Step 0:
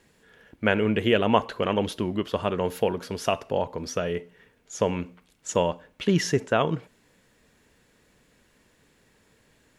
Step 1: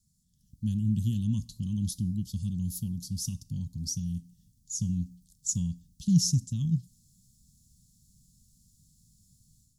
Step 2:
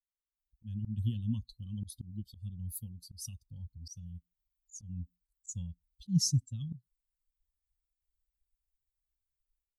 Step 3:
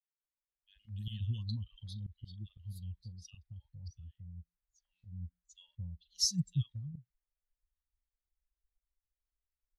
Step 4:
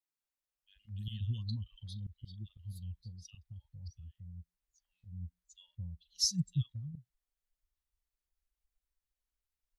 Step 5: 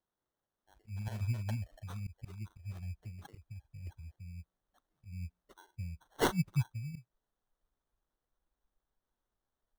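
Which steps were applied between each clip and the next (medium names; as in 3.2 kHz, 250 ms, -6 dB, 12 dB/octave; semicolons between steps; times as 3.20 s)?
inverse Chebyshev band-stop 400–2400 Hz, stop band 50 dB; level rider gain up to 10 dB; trim -5 dB
expander on every frequency bin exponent 2; slow attack 145 ms
level-controlled noise filter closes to 970 Hz, open at -32 dBFS; ten-band graphic EQ 250 Hz -11 dB, 2 kHz +10 dB, 4 kHz +9 dB, 8 kHz -5 dB; three bands offset in time highs, mids, lows 40/230 ms, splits 850/2600 Hz; trim -1 dB
vibrato 0.94 Hz 23 cents
sample-and-hold 18×; trim +1.5 dB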